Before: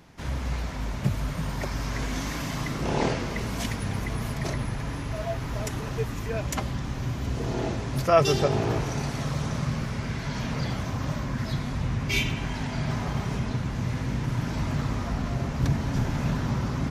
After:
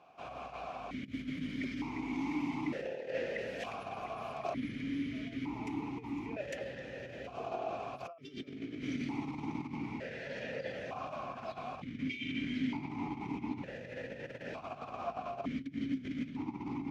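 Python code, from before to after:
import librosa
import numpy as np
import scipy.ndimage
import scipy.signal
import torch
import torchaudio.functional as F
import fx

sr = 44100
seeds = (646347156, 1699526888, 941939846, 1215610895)

y = fx.over_compress(x, sr, threshold_db=-29.0, ratio=-0.5)
y = fx.vowel_held(y, sr, hz=1.1)
y = F.gain(torch.from_numpy(y), 5.0).numpy()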